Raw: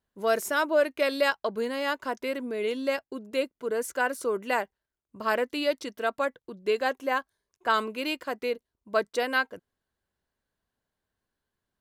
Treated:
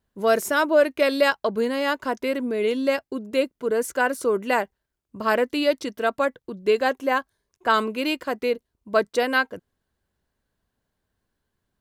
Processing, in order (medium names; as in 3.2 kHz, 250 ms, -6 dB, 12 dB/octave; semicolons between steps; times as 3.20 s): bass shelf 330 Hz +6 dB; trim +4 dB